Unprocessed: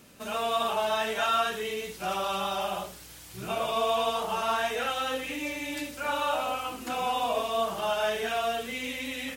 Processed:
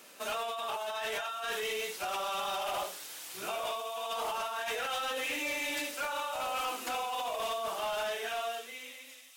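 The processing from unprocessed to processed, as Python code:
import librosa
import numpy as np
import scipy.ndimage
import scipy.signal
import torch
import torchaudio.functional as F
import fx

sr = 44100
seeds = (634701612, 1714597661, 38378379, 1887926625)

y = fx.fade_out_tail(x, sr, length_s=2.48)
y = fx.over_compress(y, sr, threshold_db=-33.0, ratio=-1.0)
y = scipy.signal.sosfilt(scipy.signal.butter(2, 490.0, 'highpass', fs=sr, output='sos'), y)
y = np.clip(y, -10.0 ** (-30.0 / 20.0), 10.0 ** (-30.0 / 20.0))
y = fx.echo_wet_highpass(y, sr, ms=557, feedback_pct=79, hz=5200.0, wet_db=-9.5)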